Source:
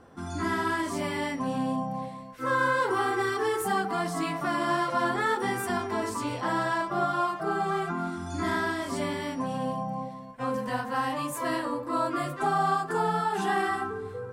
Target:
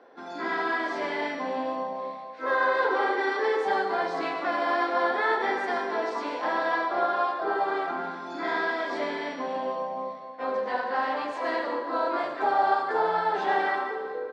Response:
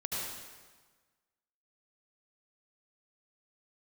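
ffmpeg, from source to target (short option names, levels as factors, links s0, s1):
-filter_complex "[0:a]asplit=3[s0][s1][s2];[s1]asetrate=33038,aresample=44100,atempo=1.33484,volume=0.251[s3];[s2]asetrate=52444,aresample=44100,atempo=0.840896,volume=0.158[s4];[s0][s3][s4]amix=inputs=3:normalize=0,highpass=f=330:w=0.5412,highpass=f=330:w=1.3066,equalizer=f=340:t=q:w=4:g=-5,equalizer=f=1200:t=q:w=4:g=-7,equalizer=f=2900:t=q:w=4:g=-7,lowpass=f=4200:w=0.5412,lowpass=f=4200:w=1.3066,asplit=2[s5][s6];[1:a]atrim=start_sample=2205,highshelf=f=10000:g=6.5[s7];[s6][s7]afir=irnorm=-1:irlink=0,volume=0.501[s8];[s5][s8]amix=inputs=2:normalize=0"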